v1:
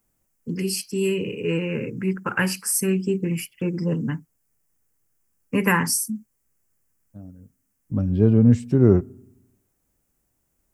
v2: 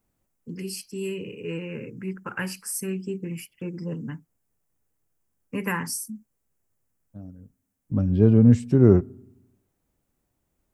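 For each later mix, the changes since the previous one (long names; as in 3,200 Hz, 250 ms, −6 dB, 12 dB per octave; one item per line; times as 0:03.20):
first voice −8.0 dB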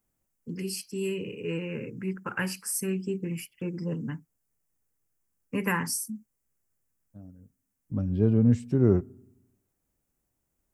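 second voice −6.0 dB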